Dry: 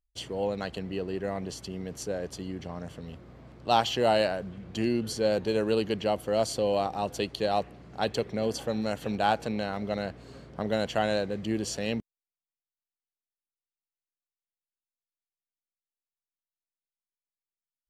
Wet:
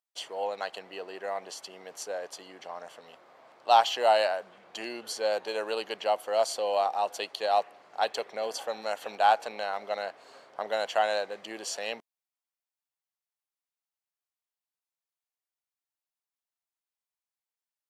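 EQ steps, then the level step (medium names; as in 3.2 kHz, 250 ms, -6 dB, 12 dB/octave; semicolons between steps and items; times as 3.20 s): resonant high-pass 750 Hz, resonance Q 1.6; 0.0 dB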